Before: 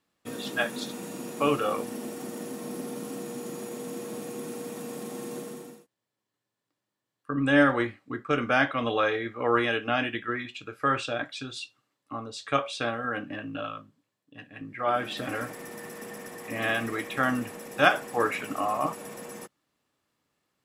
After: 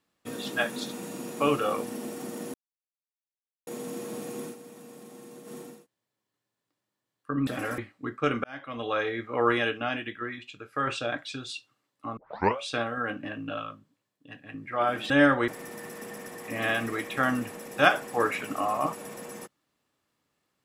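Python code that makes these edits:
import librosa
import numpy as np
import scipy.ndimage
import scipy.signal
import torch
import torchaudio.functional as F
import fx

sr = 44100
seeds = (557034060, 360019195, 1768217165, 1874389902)

y = fx.edit(x, sr, fx.silence(start_s=2.54, length_s=1.13),
    fx.fade_down_up(start_s=4.4, length_s=1.2, db=-10.0, fade_s=0.16, curve='qsin'),
    fx.swap(start_s=7.47, length_s=0.38, other_s=15.17, other_length_s=0.31),
    fx.fade_in_span(start_s=8.51, length_s=0.76),
    fx.clip_gain(start_s=9.85, length_s=1.09, db=-4.0),
    fx.tape_start(start_s=12.24, length_s=0.41), tone=tone)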